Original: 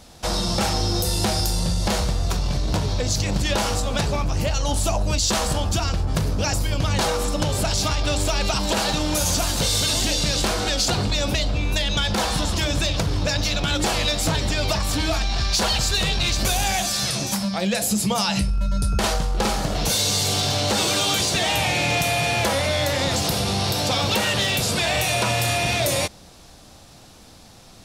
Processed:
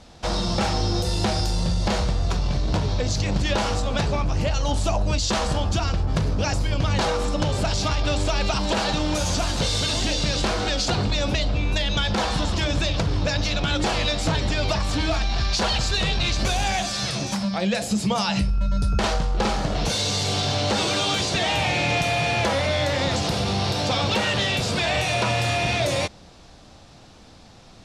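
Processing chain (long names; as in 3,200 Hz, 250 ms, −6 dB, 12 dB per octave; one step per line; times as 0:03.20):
high-frequency loss of the air 82 metres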